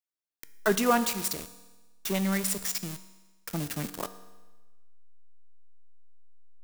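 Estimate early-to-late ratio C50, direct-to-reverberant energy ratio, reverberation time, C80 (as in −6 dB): 14.0 dB, 11.5 dB, 1.2 s, 15.5 dB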